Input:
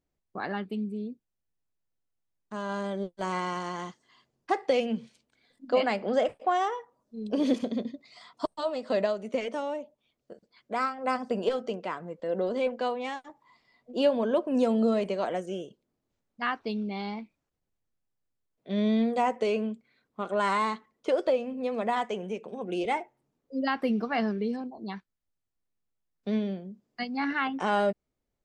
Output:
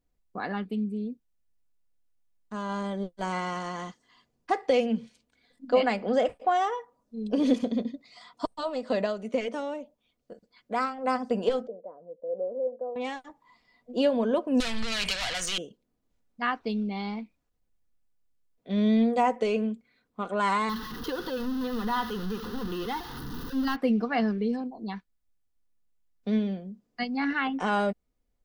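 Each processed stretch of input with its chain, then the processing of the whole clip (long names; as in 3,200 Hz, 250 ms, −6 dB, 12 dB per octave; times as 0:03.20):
0:11.67–0:12.96: transistor ladder low-pass 620 Hz, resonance 70% + low-shelf EQ 340 Hz −9.5 dB
0:14.60–0:15.58: downward compressor 3 to 1, threshold −33 dBFS + mid-hump overdrive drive 29 dB, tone 2,500 Hz, clips at −18.5 dBFS + drawn EQ curve 130 Hz 0 dB, 320 Hz −18 dB, 550 Hz −16 dB, 4,000 Hz +14 dB
0:20.69–0:23.76: converter with a step at zero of −30.5 dBFS + phaser with its sweep stopped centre 2,300 Hz, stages 6
whole clip: low-shelf EQ 67 Hz +10.5 dB; comb filter 4.1 ms, depth 31%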